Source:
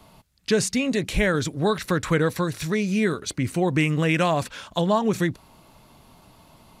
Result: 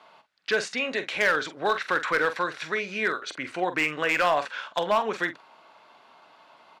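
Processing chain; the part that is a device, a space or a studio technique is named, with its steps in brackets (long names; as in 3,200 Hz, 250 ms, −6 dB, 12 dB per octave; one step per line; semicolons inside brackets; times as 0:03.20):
megaphone (band-pass filter 630–3,200 Hz; parametric band 1,500 Hz +5 dB 0.29 octaves; hard clipping −18.5 dBFS, distortion −16 dB; double-tracking delay 45 ms −11.5 dB)
level +2.5 dB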